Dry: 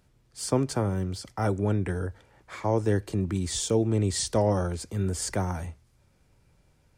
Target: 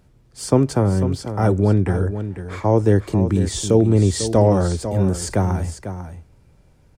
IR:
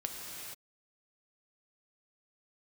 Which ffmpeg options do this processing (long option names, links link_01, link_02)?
-af "tiltshelf=frequency=970:gain=3.5,aecho=1:1:497:0.299,volume=6.5dB"